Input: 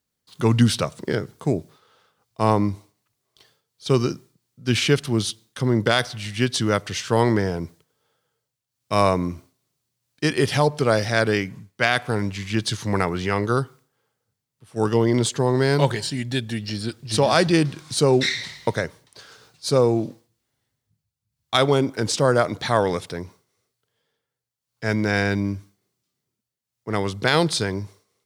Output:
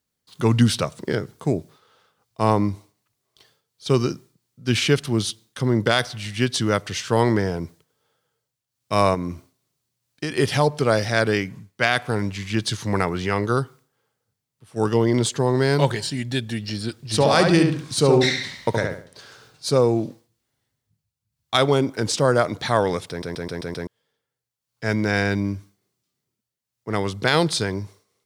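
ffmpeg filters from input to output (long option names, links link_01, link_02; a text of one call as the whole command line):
ffmpeg -i in.wav -filter_complex "[0:a]asettb=1/sr,asplit=3[link_01][link_02][link_03];[link_01]atrim=end=9.144[link_04];[link_02]atrim=start=9.14:end=10.38,asetpts=PTS-STARTPTS,afade=type=in:duration=0.004:curve=qsin,afade=type=out:start_time=1.236:duration=0.004:curve=qsin,acompressor=threshold=-22dB:ratio=6:attack=3.2:release=140:knee=1:detection=peak[link_05];[link_03]atrim=start=10.376[link_06];[link_04][link_05]acrossfade=duration=0.004:curve1=hsin:curve2=qsin[link_07];[link_07][link_06]acrossfade=duration=0.004:curve1=qsin:curve2=hsin,asettb=1/sr,asplit=3[link_08][link_09][link_10];[link_08]atrim=end=17.134[link_11];[link_09]atrim=start=17.13:end=19.66,asetpts=PTS-STARTPTS,afade=type=in:duration=0.004:curve=qsin,afade=type=out:start_time=2.526:duration=0.004:curve=qsin,asplit=2[link_12][link_13];[link_13]adelay=71,lowpass=frequency=2500:poles=1,volume=-3.5dB,asplit=2[link_14][link_15];[link_15]adelay=71,lowpass=frequency=2500:poles=1,volume=0.35,asplit=2[link_16][link_17];[link_17]adelay=71,lowpass=frequency=2500:poles=1,volume=0.35,asplit=2[link_18][link_19];[link_19]adelay=71,lowpass=frequency=2500:poles=1,volume=0.35,asplit=2[link_20][link_21];[link_21]adelay=71,lowpass=frequency=2500:poles=1,volume=0.35[link_22];[link_12][link_14][link_16][link_18][link_20][link_22]amix=inputs=6:normalize=0,atrim=end_sample=111573[link_23];[link_10]atrim=start=19.656[link_24];[link_11][link_23]acrossfade=duration=0.004:curve1=hsin:curve2=qsin[link_25];[link_25][link_24]acrossfade=duration=0.004:curve1=qsin:curve2=hsin,asplit=7[link_26][link_27][link_28][link_29][link_30][link_31][link_32];[link_26]atrim=end=23.222[link_33];[link_27]atrim=start=23.088:end=23.222[link_34];[link_28]atrim=start=23.088:end=23.222[link_35];[link_29]atrim=start=23.088:end=23.222[link_36];[link_30]atrim=start=23.088:end=23.222[link_37];[link_31]atrim=start=23.088:end=23.222[link_38];[link_32]atrim=start=23.868[link_39];[link_33][link_34]acrossfade=duration=0.004:curve1=hsin:curve2=hsin[link_40];[link_40][link_35]acrossfade=duration=0.004:curve1=hsin:curve2=hsin[link_41];[link_41][link_36]acrossfade=duration=0.004:curve1=hsin:curve2=hsin[link_42];[link_42][link_37]acrossfade=duration=0.004:curve1=hsin:curve2=hsin[link_43];[link_43][link_38]acrossfade=duration=0.004:curve1=hsin:curve2=hsin[link_44];[link_44][link_39]acrossfade=duration=0.004:curve1=hsin:curve2=hsin" out.wav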